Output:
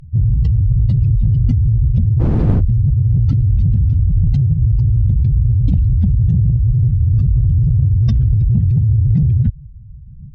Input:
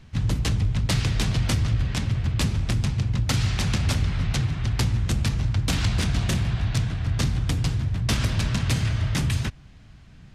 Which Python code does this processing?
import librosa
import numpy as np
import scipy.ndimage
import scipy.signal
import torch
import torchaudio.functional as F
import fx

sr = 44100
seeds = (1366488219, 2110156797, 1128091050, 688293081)

p1 = fx.spec_expand(x, sr, power=3.1)
p2 = fx.dmg_wind(p1, sr, seeds[0], corner_hz=160.0, level_db=-18.0, at=(2.19, 2.59), fade=0.02)
p3 = fx.over_compress(p2, sr, threshold_db=-25.0, ratio=-0.5)
p4 = p2 + F.gain(torch.from_numpy(p3), 2.0).numpy()
p5 = fx.cheby_harmonics(p4, sr, harmonics=(2, 4, 6, 7), levels_db=(-23, -25, -33, -40), full_scale_db=-8.0)
y = F.gain(torch.from_numpy(p5), 5.5).numpy()